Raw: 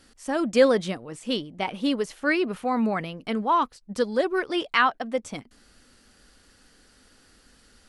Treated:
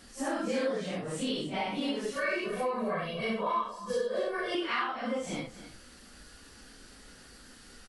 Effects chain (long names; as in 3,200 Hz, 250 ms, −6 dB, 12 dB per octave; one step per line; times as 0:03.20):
random phases in long frames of 200 ms
0:02.16–0:04.55: comb filter 1.8 ms, depth 96%
downward compressor 5 to 1, threshold −35 dBFS, peak gain reduction 20 dB
single-tap delay 269 ms −14.5 dB
level +4.5 dB